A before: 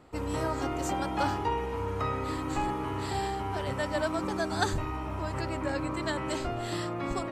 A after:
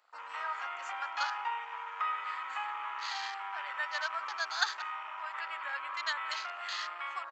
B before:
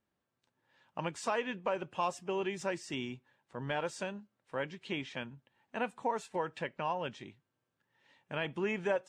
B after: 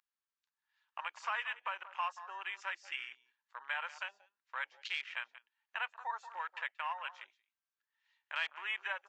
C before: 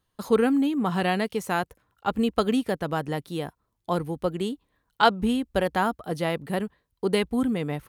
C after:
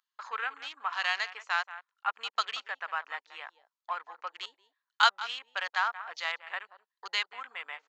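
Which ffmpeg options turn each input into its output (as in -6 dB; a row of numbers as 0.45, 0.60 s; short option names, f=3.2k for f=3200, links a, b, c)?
-filter_complex "[0:a]asplit=2[a][b];[b]adelay=180.8,volume=-15dB,highshelf=f=4k:g=-4.07[c];[a][c]amix=inputs=2:normalize=0,aresample=16000,aresample=44100,aeval=exprs='val(0)+0.001*(sin(2*PI*50*n/s)+sin(2*PI*2*50*n/s)/2+sin(2*PI*3*50*n/s)/3+sin(2*PI*4*50*n/s)/4+sin(2*PI*5*50*n/s)/5)':c=same,asplit=2[d][e];[e]acompressor=threshold=-39dB:ratio=5,volume=1dB[f];[d][f]amix=inputs=2:normalize=0,equalizer=f=4.5k:t=o:w=0.25:g=3,afwtdn=0.00891,highpass=f=1.1k:w=0.5412,highpass=f=1.1k:w=1.3066"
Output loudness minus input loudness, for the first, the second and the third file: -4.5, -3.0, -6.5 LU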